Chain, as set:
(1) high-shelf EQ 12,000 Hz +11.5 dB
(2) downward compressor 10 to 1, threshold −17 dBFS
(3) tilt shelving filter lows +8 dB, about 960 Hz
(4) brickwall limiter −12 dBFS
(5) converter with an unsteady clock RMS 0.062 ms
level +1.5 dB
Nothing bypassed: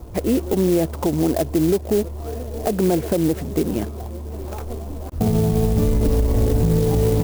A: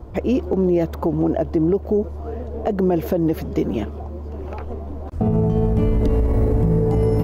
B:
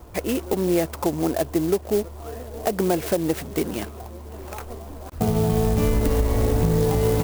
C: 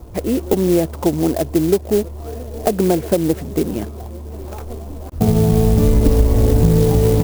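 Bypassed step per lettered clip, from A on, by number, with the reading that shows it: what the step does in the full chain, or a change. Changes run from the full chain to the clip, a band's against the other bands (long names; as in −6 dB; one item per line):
5, 4 kHz band −9.0 dB
3, 2 kHz band +4.0 dB
4, average gain reduction 1.5 dB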